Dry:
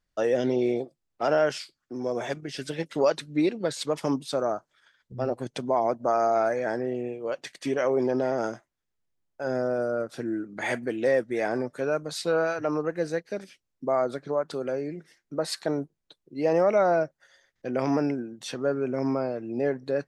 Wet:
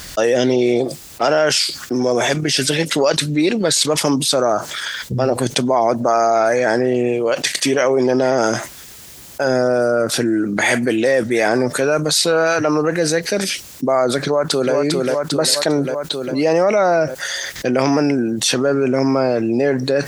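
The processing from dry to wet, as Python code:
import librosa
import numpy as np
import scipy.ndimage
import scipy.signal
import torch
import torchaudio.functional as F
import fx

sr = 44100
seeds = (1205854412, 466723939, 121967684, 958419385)

y = fx.echo_throw(x, sr, start_s=14.21, length_s=0.53, ms=400, feedback_pct=50, wet_db=-4.5)
y = scipy.signal.sosfilt(scipy.signal.butter(2, 44.0, 'highpass', fs=sr, output='sos'), y)
y = fx.high_shelf(y, sr, hz=2700.0, db=11.5)
y = fx.env_flatten(y, sr, amount_pct=70)
y = y * librosa.db_to_amplitude(4.5)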